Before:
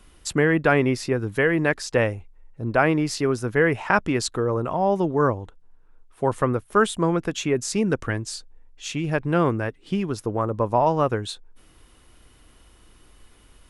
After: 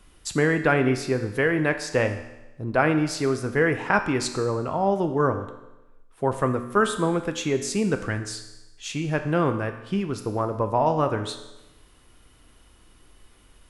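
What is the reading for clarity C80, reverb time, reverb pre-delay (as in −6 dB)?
12.0 dB, 1.0 s, 6 ms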